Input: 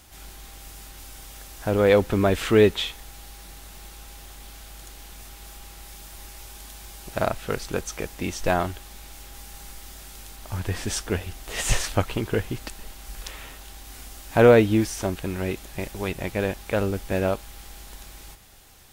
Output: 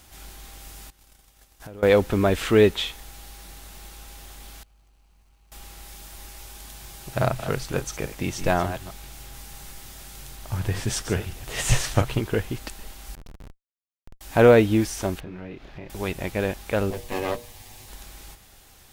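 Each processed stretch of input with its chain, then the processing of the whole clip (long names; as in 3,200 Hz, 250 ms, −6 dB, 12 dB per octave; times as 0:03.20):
0:00.90–0:01.83: noise gate −40 dBFS, range −17 dB + downward compressor 16 to 1, threshold −36 dBFS
0:04.63–0:05.52: running median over 25 samples + guitar amp tone stack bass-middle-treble 5-5-5
0:06.65–0:12.19: delay that plays each chunk backwards 141 ms, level −11 dB + parametric band 130 Hz +12.5 dB 0.29 octaves
0:13.15–0:14.21: low-pass with resonance 7,300 Hz, resonance Q 1.6 + high-shelf EQ 2,800 Hz −6 dB + comparator with hysteresis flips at −33 dBFS
0:15.20–0:15.90: high-frequency loss of the air 260 metres + double-tracking delay 28 ms −4 dB + downward compressor 2.5 to 1, threshold −38 dBFS
0:16.90–0:17.89: lower of the sound and its delayed copy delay 8.2 ms + parametric band 1,400 Hz −13 dB 0.2 octaves + mains-hum notches 60/120/180/240/300/360/420/480/540/600 Hz
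whole clip: no processing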